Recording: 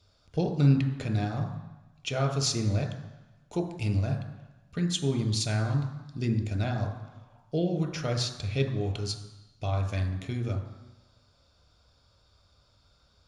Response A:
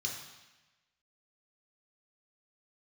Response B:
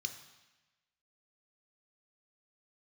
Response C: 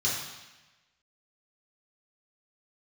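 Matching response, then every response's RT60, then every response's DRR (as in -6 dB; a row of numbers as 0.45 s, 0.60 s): B; 1.1 s, 1.1 s, 1.1 s; -1.0 dB, 6.0 dB, -7.0 dB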